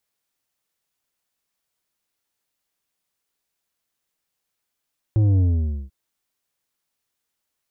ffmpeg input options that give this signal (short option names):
-f lavfi -i "aevalsrc='0.178*clip((0.74-t)/0.51,0,1)*tanh(2.51*sin(2*PI*110*0.74/log(65/110)*(exp(log(65/110)*t/0.74)-1)))/tanh(2.51)':d=0.74:s=44100"